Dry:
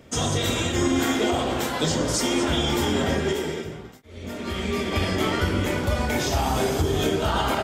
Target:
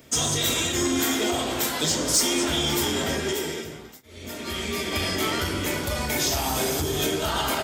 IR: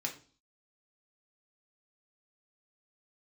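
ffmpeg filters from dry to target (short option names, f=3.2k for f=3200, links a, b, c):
-filter_complex "[0:a]asoftclip=type=tanh:threshold=-14.5dB,aemphasis=mode=production:type=75kf,asplit=2[a][b];[1:a]atrim=start_sample=2205,lowpass=8.2k[c];[b][c]afir=irnorm=-1:irlink=0,volume=-9.5dB[d];[a][d]amix=inputs=2:normalize=0,volume=-4.5dB"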